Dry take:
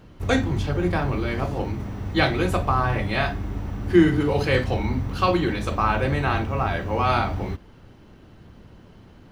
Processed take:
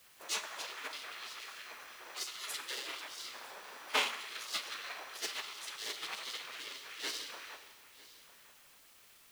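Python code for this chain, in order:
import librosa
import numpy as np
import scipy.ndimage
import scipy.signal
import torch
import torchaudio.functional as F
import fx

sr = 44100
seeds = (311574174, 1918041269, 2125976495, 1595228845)

y = fx.lower_of_two(x, sr, delay_ms=1.2)
y = fx.spec_gate(y, sr, threshold_db=-25, keep='weak')
y = scipy.signal.sosfilt(scipy.signal.butter(2, 260.0, 'highpass', fs=sr, output='sos'), y)
y = fx.quant_dither(y, sr, seeds[0], bits=10, dither='triangular')
y = y + 10.0 ** (-16.5 / 20.0) * np.pad(y, (int(953 * sr / 1000.0), 0))[:len(y)]
y = fx.rev_schroeder(y, sr, rt60_s=1.5, comb_ms=29, drr_db=7.0)
y = fx.upward_expand(y, sr, threshold_db=-41.0, expansion=2.5)
y = y * 10.0 ** (7.5 / 20.0)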